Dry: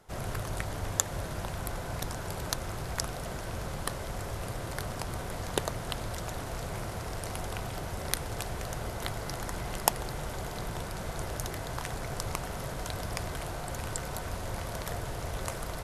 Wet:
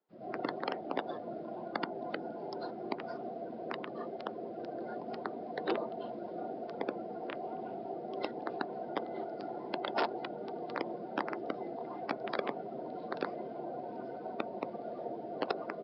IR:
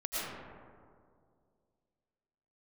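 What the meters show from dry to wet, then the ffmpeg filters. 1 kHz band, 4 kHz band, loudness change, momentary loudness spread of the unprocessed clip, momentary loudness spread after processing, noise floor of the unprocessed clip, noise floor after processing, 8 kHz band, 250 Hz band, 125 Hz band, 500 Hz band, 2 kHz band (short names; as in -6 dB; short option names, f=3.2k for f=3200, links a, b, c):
-0.5 dB, -9.0 dB, -3.5 dB, 5 LU, 6 LU, -38 dBFS, -44 dBFS, under -40 dB, +1.0 dB, -19.0 dB, +1.5 dB, -4.5 dB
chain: -filter_complex "[0:a]tiltshelf=f=640:g=6.5[a];[1:a]atrim=start_sample=2205,afade=t=out:st=0.24:d=0.01,atrim=end_sample=11025,asetrate=48510,aresample=44100[b];[a][b]afir=irnorm=-1:irlink=0,aresample=11025,aeval=exprs='(mod(8.41*val(0)+1,2)-1)/8.41':c=same,aresample=44100,afftdn=nr=19:nf=-33,acrossover=split=810|1200[c][d][e];[c]highpass=f=260:w=0.5412,highpass=f=260:w=1.3066[f];[d]volume=27.5dB,asoftclip=hard,volume=-27.5dB[g];[e]alimiter=level_in=1dB:limit=-24dB:level=0:latency=1:release=146,volume=-1dB[h];[f][g][h]amix=inputs=3:normalize=0,volume=-1dB"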